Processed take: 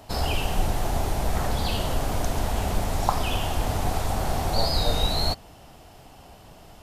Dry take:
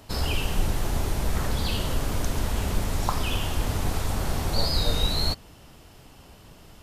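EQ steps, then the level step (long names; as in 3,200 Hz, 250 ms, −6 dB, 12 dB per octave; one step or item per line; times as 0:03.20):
parametric band 730 Hz +9 dB 0.6 octaves
0.0 dB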